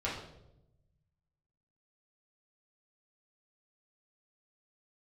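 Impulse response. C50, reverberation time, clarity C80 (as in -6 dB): 3.5 dB, 0.85 s, 7.0 dB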